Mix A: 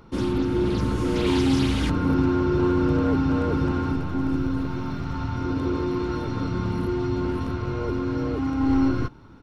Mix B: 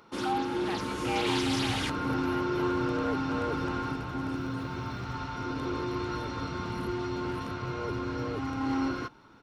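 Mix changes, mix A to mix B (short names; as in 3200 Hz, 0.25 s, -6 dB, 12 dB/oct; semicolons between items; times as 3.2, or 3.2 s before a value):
speech: unmuted; first sound: add HPF 750 Hz 6 dB/oct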